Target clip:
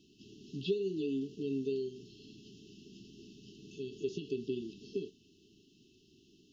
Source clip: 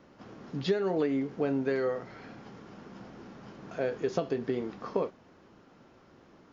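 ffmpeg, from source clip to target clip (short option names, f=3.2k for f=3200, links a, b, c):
-filter_complex "[0:a]acrossover=split=3000[a][b];[b]acompressor=threshold=-60dB:ratio=4:attack=1:release=60[c];[a][c]amix=inputs=2:normalize=0,afftfilt=real='re*(1-between(b*sr/4096,440,2600))':imag='im*(1-between(b*sr/4096,440,2600))':win_size=4096:overlap=0.75,tiltshelf=f=710:g=-5.5,volume=-1.5dB"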